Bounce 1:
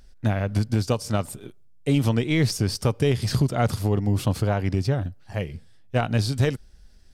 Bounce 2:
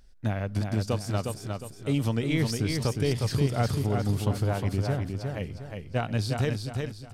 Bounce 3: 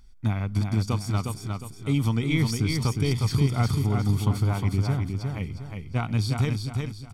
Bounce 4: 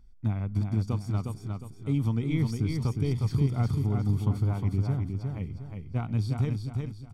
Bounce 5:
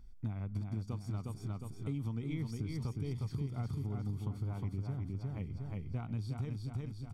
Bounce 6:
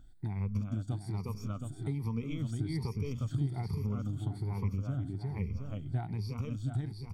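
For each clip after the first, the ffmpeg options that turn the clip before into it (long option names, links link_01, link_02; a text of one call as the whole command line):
ffmpeg -i in.wav -af "aecho=1:1:359|718|1077|1436|1795:0.596|0.22|0.0815|0.0302|0.0112,volume=-5.5dB" out.wav
ffmpeg -i in.wav -af "aecho=1:1:0.9:0.64" out.wav
ffmpeg -i in.wav -af "tiltshelf=frequency=970:gain=5.5,volume=-8dB" out.wav
ffmpeg -i in.wav -af "acompressor=threshold=-38dB:ratio=4,volume=1dB" out.wav
ffmpeg -i in.wav -af "afftfilt=real='re*pow(10,15/40*sin(2*PI*(0.84*log(max(b,1)*sr/1024/100)/log(2)-(1.2)*(pts-256)/sr)))':imag='im*pow(10,15/40*sin(2*PI*(0.84*log(max(b,1)*sr/1024/100)/log(2)-(1.2)*(pts-256)/sr)))':win_size=1024:overlap=0.75,volume=1.5dB" out.wav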